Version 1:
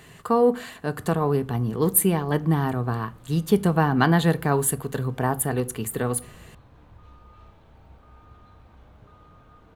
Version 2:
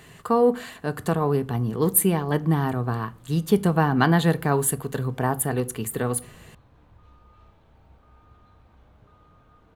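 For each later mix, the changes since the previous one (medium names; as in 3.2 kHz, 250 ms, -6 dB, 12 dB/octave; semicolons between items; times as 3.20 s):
background -4.0 dB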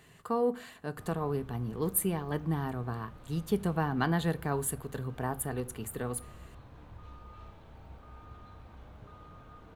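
speech -10.0 dB; background +4.5 dB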